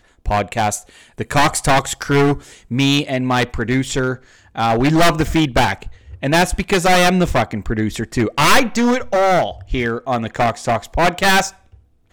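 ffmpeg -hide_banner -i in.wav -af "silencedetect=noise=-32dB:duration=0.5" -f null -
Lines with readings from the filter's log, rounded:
silence_start: 11.50
silence_end: 12.12 | silence_duration: 0.62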